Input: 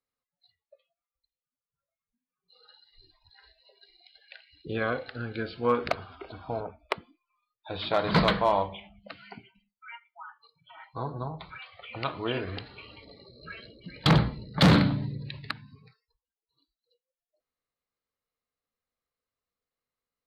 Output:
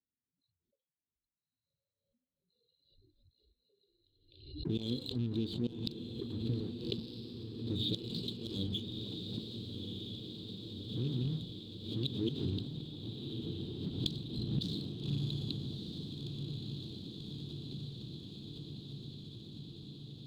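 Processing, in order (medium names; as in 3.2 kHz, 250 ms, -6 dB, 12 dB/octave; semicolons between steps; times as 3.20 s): rattle on loud lows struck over -33 dBFS, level -29 dBFS; high-pass 100 Hz 6 dB/octave; level-controlled noise filter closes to 670 Hz, open at -21.5 dBFS; inverse Chebyshev band-stop 660–2000 Hz, stop band 50 dB; peaking EQ 3.6 kHz +13.5 dB 0.57 oct; inverted gate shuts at -24 dBFS, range -24 dB; waveshaping leveller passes 1; compression 2:1, threshold -38 dBFS, peak gain reduction 6 dB; echo that smears into a reverb 1269 ms, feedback 76%, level -5.5 dB; swell ahead of each attack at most 80 dB/s; trim +3.5 dB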